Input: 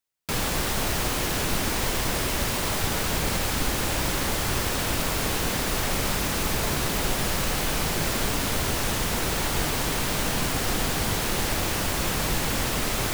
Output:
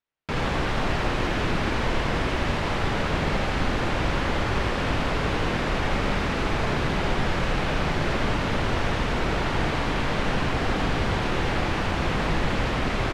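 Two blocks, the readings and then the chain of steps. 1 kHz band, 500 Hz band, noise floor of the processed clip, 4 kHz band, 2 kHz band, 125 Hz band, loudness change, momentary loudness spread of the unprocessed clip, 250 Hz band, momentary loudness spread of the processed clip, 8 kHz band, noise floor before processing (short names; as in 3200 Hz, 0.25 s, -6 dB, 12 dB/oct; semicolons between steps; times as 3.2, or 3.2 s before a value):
+2.5 dB, +3.0 dB, -27 dBFS, -3.5 dB, +1.5 dB, +3.0 dB, -0.5 dB, 0 LU, +3.0 dB, 1 LU, -15.5 dB, -27 dBFS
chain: LPF 2700 Hz 12 dB/oct; on a send: echo 81 ms -4.5 dB; on the sum: gain +1.5 dB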